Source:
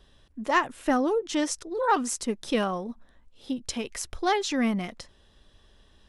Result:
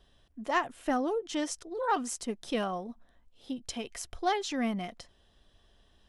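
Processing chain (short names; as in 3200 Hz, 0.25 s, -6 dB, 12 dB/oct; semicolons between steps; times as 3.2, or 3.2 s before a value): small resonant body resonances 700/3100 Hz, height 8 dB; gain -6 dB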